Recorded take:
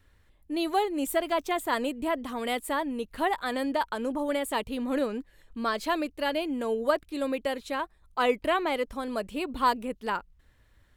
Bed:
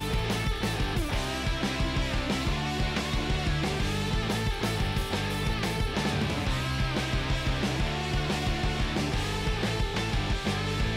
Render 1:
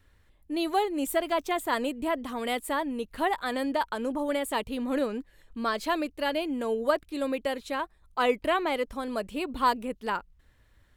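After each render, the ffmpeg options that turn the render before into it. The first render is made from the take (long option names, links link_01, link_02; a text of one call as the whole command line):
ffmpeg -i in.wav -af anull out.wav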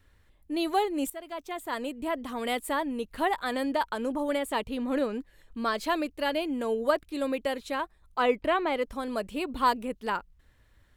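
ffmpeg -i in.wav -filter_complex "[0:a]asettb=1/sr,asplit=3[link_01][link_02][link_03];[link_01]atrim=end=4.384[link_04];[link_02]atrim=start=4.38:end=5.13,asetpts=PTS-STARTPTS,afade=type=in:duration=0.004:curve=qsin,afade=type=out:start_time=0.746:duration=0.004:curve=qsin,highshelf=frequency=6100:gain=-5[link_05];[link_03]atrim=start=5.126[link_06];[link_04][link_05]acrossfade=duration=0.004:curve1=hsin:curve2=qsin[link_07];[link_07][link_06]acrossfade=duration=0.004:curve1=qsin:curve2=hsin,asettb=1/sr,asplit=3[link_08][link_09][link_10];[link_08]atrim=end=8.204[link_11];[link_09]atrim=start=8.2:end=8.82,asetpts=PTS-STARTPTS,afade=type=in:duration=0.004:curve=qsin,afade=type=out:start_time=0.616:duration=0.004:curve=qsin,aemphasis=mode=reproduction:type=cd[link_12];[link_10]atrim=start=8.816[link_13];[link_11][link_12]acrossfade=duration=0.004:curve1=hsin:curve2=qsin[link_14];[link_14][link_13]acrossfade=duration=0.004:curve1=qsin:curve2=hsin,asplit=2[link_15][link_16];[link_15]atrim=end=1.1,asetpts=PTS-STARTPTS,afade=type=out:start_time=1.096:duration=0.004:curve=hsin:silence=0.149624[link_17];[link_16]atrim=start=1.1,asetpts=PTS-STARTPTS,afade=type=in:duration=1.36:silence=0.149624[link_18];[link_17][link_18]concat=n=2:v=0:a=1" out.wav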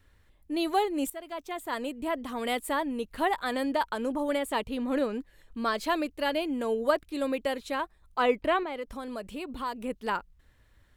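ffmpeg -i in.wav -filter_complex "[0:a]asettb=1/sr,asplit=3[link_01][link_02][link_03];[link_01]atrim=end=8.634[link_04];[link_02]atrim=start=8.63:end=9.82,asetpts=PTS-STARTPTS,afade=type=in:duration=0.004:curve=qsin,afade=type=out:start_time=1.186:duration=0.004:curve=qsin,acompressor=threshold=-37dB:ratio=2:attack=3.2:release=140:knee=1:detection=peak[link_05];[link_03]atrim=start=9.816[link_06];[link_04][link_05]acrossfade=duration=0.004:curve1=hsin:curve2=qsin[link_07];[link_07][link_06]acrossfade=duration=0.004:curve1=qsin:curve2=hsin" out.wav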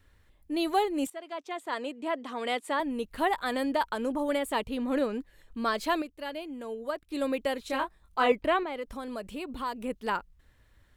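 ffmpeg -i in.wav -filter_complex "[0:a]asettb=1/sr,asplit=3[link_01][link_02][link_03];[link_01]atrim=end=1.074[link_04];[link_02]atrim=start=1.07:end=2.8,asetpts=PTS-STARTPTS,afade=type=in:duration=0.004:curve=qsin,afade=type=out:start_time=1.726:duration=0.004:curve=qsin,highpass=280,lowpass=6800[link_05];[link_03]atrim=start=2.796[link_06];[link_04][link_05]acrossfade=duration=0.004:curve1=hsin:curve2=qsin[link_07];[link_07][link_06]acrossfade=duration=0.004:curve1=qsin:curve2=hsin,asettb=1/sr,asplit=3[link_08][link_09][link_10];[link_08]atrim=end=7.674[link_11];[link_09]atrim=start=7.67:end=8.32,asetpts=PTS-STARTPTS,afade=type=in:duration=0.004:curve=qsin,afade=type=out:start_time=0.646:duration=0.004:curve=qsin,asplit=2[link_12][link_13];[link_13]adelay=23,volume=-4dB[link_14];[link_12][link_14]amix=inputs=2:normalize=0,atrim=end_sample=28665[link_15];[link_10]atrim=start=8.316[link_16];[link_11][link_15]acrossfade=duration=0.004:curve1=hsin:curve2=qsin[link_17];[link_17][link_16]acrossfade=duration=0.004:curve1=qsin:curve2=hsin,asplit=3[link_18][link_19][link_20];[link_18]atrim=end=6.022[link_21];[link_19]atrim=start=6.018:end=7.102,asetpts=PTS-STARTPTS,volume=-8.5dB[link_22];[link_20]atrim=start=7.098[link_23];[link_21][link_22]acrossfade=duration=0.004:curve1=hsin:curve2=hsin[link_24];[link_24][link_23]acrossfade=duration=0.004:curve1=hsin:curve2=hsin" out.wav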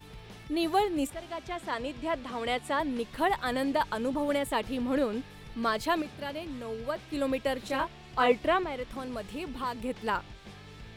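ffmpeg -i in.wav -i bed.wav -filter_complex "[1:a]volume=-19dB[link_01];[0:a][link_01]amix=inputs=2:normalize=0" out.wav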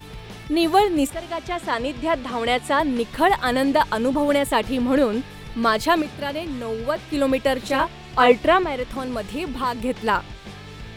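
ffmpeg -i in.wav -af "volume=9.5dB" out.wav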